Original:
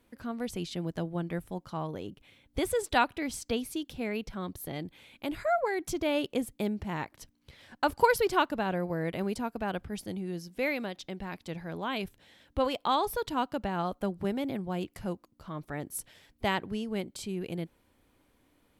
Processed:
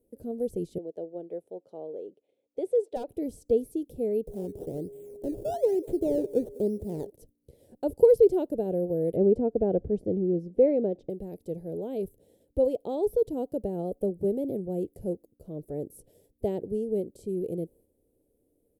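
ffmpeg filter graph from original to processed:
-filter_complex "[0:a]asettb=1/sr,asplit=3[a][b][c];[a]atrim=end=0.784[d];[b]atrim=start=0.78:end=3.08,asetpts=PTS-STARTPTS,afade=t=in:d=0.004:c=qsin,afade=t=out:st=2.296:d=0.004:c=qsin,highpass=520,lowpass=3.4k,aeval=exprs='0.119*(abs(mod(val(0)/0.119+3,4)-2)-1)':c=same[e];[c]atrim=start=3.076[f];[d][e]acrossfade=d=0.004:c1=hsin:c2=qsin[g];[g][f]acrossfade=d=0.004:c1=qsin:c2=hsin,asettb=1/sr,asplit=3[h][i][j];[h]atrim=end=4.274[k];[i]atrim=start=4.27:end=7.1,asetpts=PTS-STARTPTS,afade=t=in:d=0.004:c=qsin,afade=t=out:st=2.826:d=0.004:c=qsin,acrusher=samples=15:mix=1:aa=0.000001:lfo=1:lforange=15:lforate=1.1,aeval=exprs='val(0)+0.00282*sin(2*PI*410*n/s)':c=same,aecho=1:1:197|394:0.0708|0.0255,atrim=end_sample=124803[l];[j]atrim=start=7.096[m];[k][l]acrossfade=d=0.004:c1=hsin:c2=qsin[n];[n][m]acrossfade=d=0.004:c1=qsin:c2=hsin,asettb=1/sr,asplit=3[o][p][q];[o]atrim=end=9.164[r];[p]atrim=start=9.16:end=11.1,asetpts=PTS-STARTPTS,afade=t=in:d=0.004:c=qsin,afade=t=out:st=1.936:d=0.004:c=qsin,lowpass=1.9k,acontrast=55[s];[q]atrim=start=11.096[t];[r][s]acrossfade=d=0.004:c1=hsin:c2=qsin[u];[u][t]acrossfade=d=0.004:c1=qsin:c2=hsin,acrossover=split=5300[v][w];[w]acompressor=threshold=-56dB:ratio=4:attack=1:release=60[x];[v][x]amix=inputs=2:normalize=0,agate=range=-6dB:threshold=-59dB:ratio=16:detection=peak,firequalizer=gain_entry='entry(250,0);entry(450,11);entry(1100,-30);entry(9600,3)':delay=0.05:min_phase=1"

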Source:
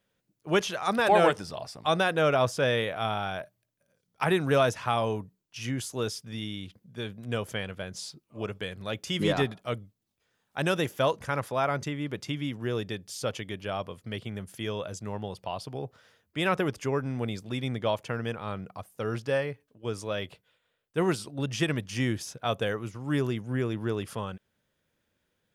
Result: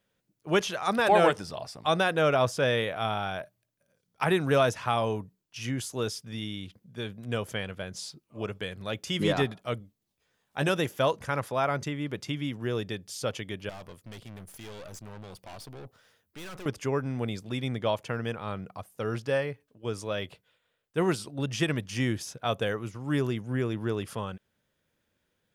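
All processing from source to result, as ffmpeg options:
-filter_complex "[0:a]asettb=1/sr,asplit=3[a][b][c];[a]atrim=end=9.794[d];[b]atrim=start=9.79:end=10.69,asetpts=PTS-STARTPTS,afade=t=in:d=0.004:c=qsin,afade=t=out:st=0.896:d=0.004:c=qsin,equalizer=f=1.4k:w=6.2:g=-3,asplit=2[e][f];[f]adelay=14,volume=-6.5dB[g];[e][g]amix=inputs=2:normalize=0,atrim=end_sample=39690[h];[c]atrim=start=10.686[i];[d][h]acrossfade=d=0.004:c1=hsin:c2=qsin[j];[j][i]acrossfade=d=0.004:c1=qsin:c2=hsin,asettb=1/sr,asplit=3[k][l][m];[k]atrim=end=13.694[n];[l]atrim=start=13.69:end=16.66,asetpts=PTS-STARTPTS,afade=t=in:d=0.004:c=qsin,afade=t=out:st=2.966:d=0.004:c=qsin,highshelf=f=9.6k:g=10.5,aeval=exprs='(tanh(112*val(0)+0.65)-tanh(0.65))/112':c=same[o];[m]atrim=start=16.656[p];[n][o]acrossfade=d=0.004:c1=hsin:c2=qsin[q];[q][p]acrossfade=d=0.004:c1=qsin:c2=hsin"

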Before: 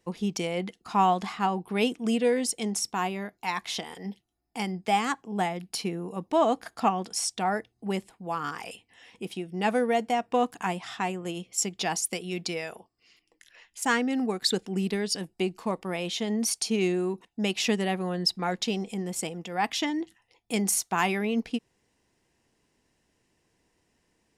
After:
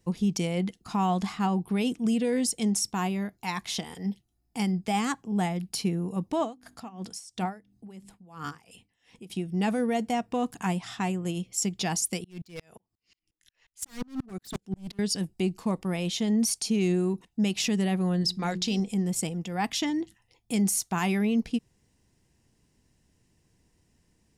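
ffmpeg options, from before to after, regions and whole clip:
-filter_complex "[0:a]asettb=1/sr,asplit=3[a][b][c];[a]atrim=end=6.394[d];[b]atrim=start=6.39:end=9.3,asetpts=PTS-STARTPTS,afade=t=in:d=0.004:c=qsin,afade=t=out:st=2.906:d=0.004:c=qsin,bandreject=f=50:t=h:w=6,bandreject=f=100:t=h:w=6,bandreject=f=150:t=h:w=6,bandreject=f=200:t=h:w=6,bandreject=f=250:t=h:w=6,bandreject=f=300:t=h:w=6,aeval=exprs='val(0)*pow(10,-21*(0.5-0.5*cos(2*PI*2.9*n/s))/20)':c=same[e];[c]atrim=start=9.296[f];[d][e]acrossfade=d=0.004:c1=hsin:c2=qsin[g];[g][f]acrossfade=d=0.004:c1=qsin:c2=hsin,asettb=1/sr,asplit=3[h][i][j];[h]atrim=end=12.244[k];[i]atrim=start=12.24:end=14.99,asetpts=PTS-STARTPTS,afade=t=in:d=0.004:c=qsin,afade=t=out:st=2.746:d=0.004:c=qsin,aeval=exprs='0.0562*(abs(mod(val(0)/0.0562+3,4)-2)-1)':c=same,aeval=exprs='val(0)*pow(10,-37*if(lt(mod(-5.6*n/s,1),2*abs(-5.6)/1000),1-mod(-5.6*n/s,1)/(2*abs(-5.6)/1000),(mod(-5.6*n/s,1)-2*abs(-5.6)/1000)/(1-2*abs(-5.6)/1000))/20)':c=same[l];[j]atrim=start=14.986[m];[k][l]acrossfade=d=0.004:c1=hsin:c2=qsin[n];[n][m]acrossfade=d=0.004:c1=qsin:c2=hsin,asettb=1/sr,asplit=3[o][p][q];[o]atrim=end=18.214[r];[p]atrim=start=18.21:end=18.8,asetpts=PTS-STARTPTS,afade=t=in:d=0.004:c=qsin,afade=t=out:st=0.586:d=0.004:c=qsin,equalizer=f=4.6k:w=0.85:g=7.5,bandreject=f=60:t=h:w=6,bandreject=f=120:t=h:w=6,bandreject=f=180:t=h:w=6,bandreject=f=240:t=h:w=6,bandreject=f=300:t=h:w=6,bandreject=f=360:t=h:w=6,bandreject=f=420:t=h:w=6,bandreject=f=480:t=h:w=6[s];[q]atrim=start=18.796[t];[r][s]acrossfade=d=0.004:c1=hsin:c2=qsin[u];[u][t]acrossfade=d=0.004:c1=qsin:c2=hsin,bass=f=250:g=13,treble=f=4k:g=6,alimiter=limit=-15dB:level=0:latency=1:release=32,volume=-3dB"

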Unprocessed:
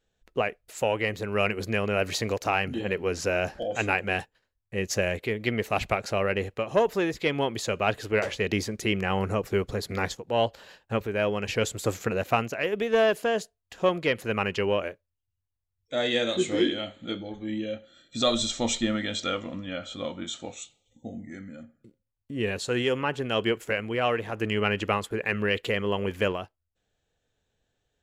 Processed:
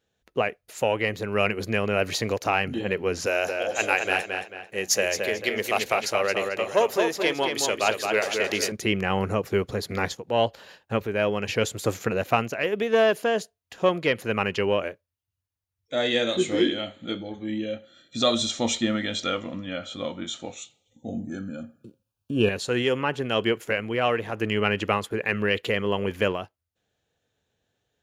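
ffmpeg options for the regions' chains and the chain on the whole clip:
-filter_complex "[0:a]asettb=1/sr,asplit=3[a][b][c];[a]atrim=end=3.264[d];[b]atrim=start=3.26:end=8.72,asetpts=PTS-STARTPTS,afade=t=in:d=0.004:c=qsin,afade=t=out:st=5.456:d=0.004:c=qsin,bass=f=250:g=-13,treble=f=4k:g=9,bandreject=f=60:t=h:w=6,bandreject=f=120:t=h:w=6,bandreject=f=180:t=h:w=6,bandreject=f=240:t=h:w=6,bandreject=f=300:t=h:w=6,asplit=2[e][f];[f]adelay=221,lowpass=f=4.6k:p=1,volume=-4.5dB,asplit=2[g][h];[h]adelay=221,lowpass=f=4.6k:p=1,volume=0.38,asplit=2[i][j];[j]adelay=221,lowpass=f=4.6k:p=1,volume=0.38,asplit=2[k][l];[l]adelay=221,lowpass=f=4.6k:p=1,volume=0.38,asplit=2[m][n];[n]adelay=221,lowpass=f=4.6k:p=1,volume=0.38[o];[e][g][i][k][m][o]amix=inputs=6:normalize=0,atrim=end_sample=240786[p];[c]atrim=start=8.716[q];[d][p]acrossfade=d=0.004:c1=hsin:c2=qsin[r];[r][q]acrossfade=d=0.004:c1=qsin:c2=hsin,asettb=1/sr,asplit=3[s][t][u];[s]atrim=end=21.084[v];[t]atrim=start=21.08:end=22.49,asetpts=PTS-STARTPTS,afade=t=in:d=0.004:c=qsin,afade=t=out:st=1.406:d=0.004:c=qsin,acontrast=39,asuperstop=centerf=2000:order=8:qfactor=3.2[w];[u]atrim=start=22.486[x];[v][w]acrossfade=d=0.004:c1=hsin:c2=qsin[y];[y][x]acrossfade=d=0.004:c1=qsin:c2=hsin,highpass=79,bandreject=f=7.8k:w=11,volume=2dB"

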